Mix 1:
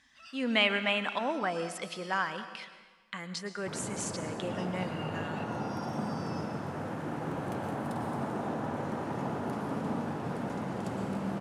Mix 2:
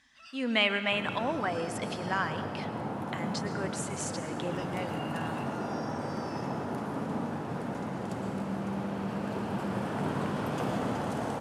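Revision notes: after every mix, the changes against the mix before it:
second sound: entry -2.75 s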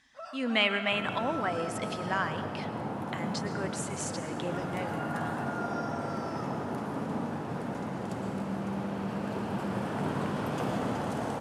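first sound: remove resonant high-pass 2900 Hz, resonance Q 3.1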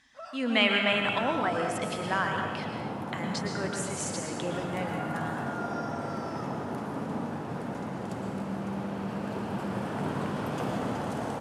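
speech: send +10.0 dB

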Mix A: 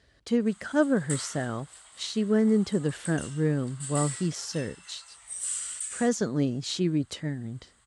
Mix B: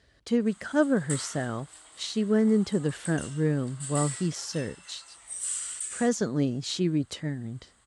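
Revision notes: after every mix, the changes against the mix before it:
background: remove HPF 710 Hz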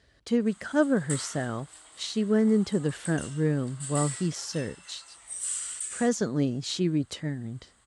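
none

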